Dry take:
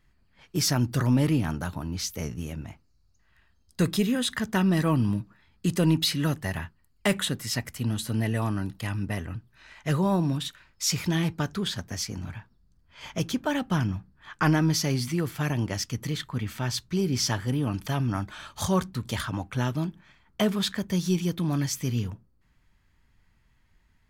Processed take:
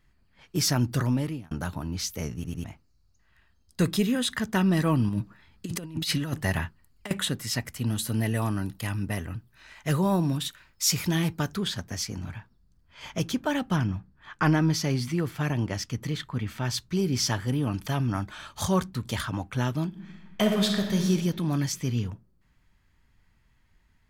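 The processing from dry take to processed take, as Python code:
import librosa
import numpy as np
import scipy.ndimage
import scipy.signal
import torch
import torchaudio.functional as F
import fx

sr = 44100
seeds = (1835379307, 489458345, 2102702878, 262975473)

y = fx.over_compress(x, sr, threshold_db=-28.0, ratio=-0.5, at=(5.09, 7.11))
y = fx.high_shelf(y, sr, hz=10000.0, db=10.0, at=(7.86, 11.57))
y = fx.high_shelf(y, sr, hz=5400.0, db=-6.5, at=(13.76, 16.65))
y = fx.reverb_throw(y, sr, start_s=19.87, length_s=1.22, rt60_s=1.5, drr_db=2.0)
y = fx.high_shelf(y, sr, hz=11000.0, db=-11.0, at=(21.72, 22.12))
y = fx.edit(y, sr, fx.fade_out_span(start_s=0.95, length_s=0.56),
    fx.stutter_over(start_s=2.34, slice_s=0.1, count=3), tone=tone)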